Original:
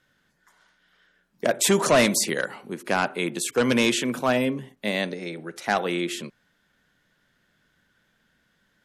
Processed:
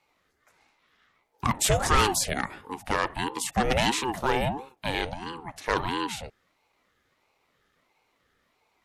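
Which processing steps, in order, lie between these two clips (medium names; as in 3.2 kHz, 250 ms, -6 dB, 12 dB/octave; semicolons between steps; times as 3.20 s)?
ring modulator with a swept carrier 450 Hz, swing 50%, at 1.5 Hz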